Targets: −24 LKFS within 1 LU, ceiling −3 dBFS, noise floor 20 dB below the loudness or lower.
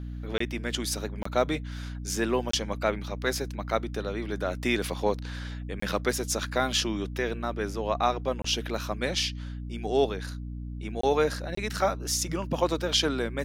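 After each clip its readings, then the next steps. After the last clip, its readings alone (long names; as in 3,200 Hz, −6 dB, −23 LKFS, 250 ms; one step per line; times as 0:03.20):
number of dropouts 7; longest dropout 24 ms; mains hum 60 Hz; hum harmonics up to 300 Hz; level of the hum −34 dBFS; integrated loudness −29.5 LKFS; sample peak −11.0 dBFS; target loudness −24.0 LKFS
→ repair the gap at 0:00.38/0:01.23/0:02.51/0:05.80/0:08.42/0:11.01/0:11.55, 24 ms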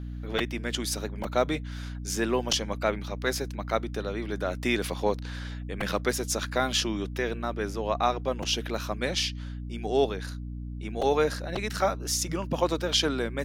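number of dropouts 0; mains hum 60 Hz; hum harmonics up to 300 Hz; level of the hum −34 dBFS
→ mains-hum notches 60/120/180/240/300 Hz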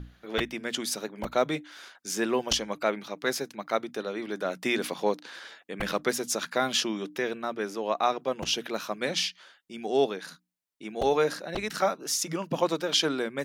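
mains hum none found; integrated loudness −29.5 LKFS; sample peak −11.0 dBFS; target loudness −24.0 LKFS
→ level +5.5 dB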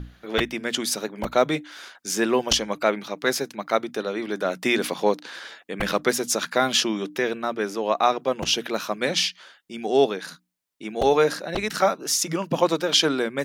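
integrated loudness −24.0 LKFS; sample peak −5.5 dBFS; background noise floor −58 dBFS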